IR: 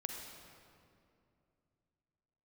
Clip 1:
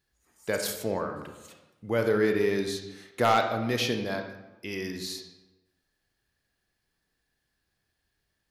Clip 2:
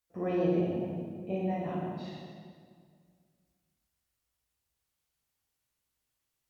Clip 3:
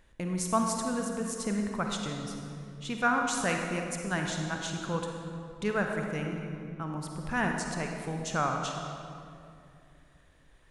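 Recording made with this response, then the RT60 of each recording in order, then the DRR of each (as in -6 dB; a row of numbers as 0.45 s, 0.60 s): 3; 1.1 s, 2.0 s, 2.6 s; 4.5 dB, -5.5 dB, 2.0 dB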